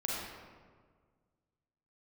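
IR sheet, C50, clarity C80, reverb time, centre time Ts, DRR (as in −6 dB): −2.5 dB, 0.0 dB, 1.7 s, 105 ms, −5.0 dB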